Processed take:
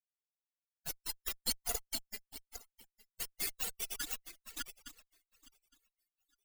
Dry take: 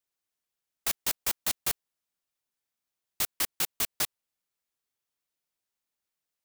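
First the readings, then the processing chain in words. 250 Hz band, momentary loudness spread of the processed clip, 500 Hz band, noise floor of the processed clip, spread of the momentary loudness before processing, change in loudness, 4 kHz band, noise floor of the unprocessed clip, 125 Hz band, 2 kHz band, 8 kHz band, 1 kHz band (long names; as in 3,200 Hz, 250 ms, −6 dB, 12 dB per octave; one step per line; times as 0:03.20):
−5.5 dB, 14 LU, −6.5 dB, below −85 dBFS, 3 LU, −9.5 dB, −6.0 dB, below −85 dBFS, −7.5 dB, −8.0 dB, −7.0 dB, −9.0 dB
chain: feedback delay that plays each chunk backwards 431 ms, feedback 57%, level −1 dB
spectral peaks only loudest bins 8
harmonic generator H 4 −9 dB, 5 −45 dB, 7 −16 dB, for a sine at −30 dBFS
level +8 dB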